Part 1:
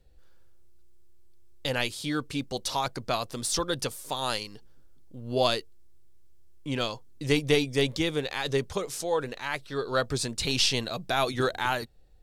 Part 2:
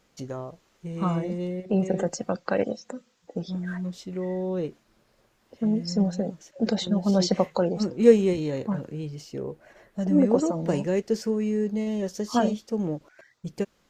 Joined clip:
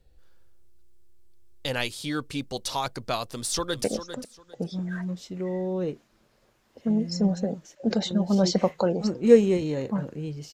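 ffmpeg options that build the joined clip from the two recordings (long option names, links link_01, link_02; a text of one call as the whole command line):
ffmpeg -i cue0.wav -i cue1.wav -filter_complex "[0:a]apad=whole_dur=10.53,atrim=end=10.53,atrim=end=3.842[link_01];[1:a]atrim=start=2.598:end=9.29[link_02];[link_01][link_02]acrossfade=duration=0.004:curve1=hsin:curve2=hsin,asplit=2[link_03][link_04];[link_04]afade=type=in:start_time=3.24:duration=0.01,afade=type=out:start_time=3.84:duration=0.01,aecho=0:1:400|800|1200:0.298538|0.0597077|0.0119415[link_05];[link_03][link_05]amix=inputs=2:normalize=0" out.wav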